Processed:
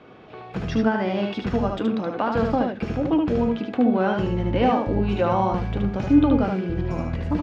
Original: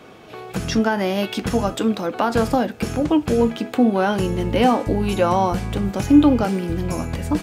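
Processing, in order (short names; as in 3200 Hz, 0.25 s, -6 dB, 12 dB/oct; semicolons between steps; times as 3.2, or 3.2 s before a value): air absorption 230 m; echo 74 ms -4 dB; gain -3.5 dB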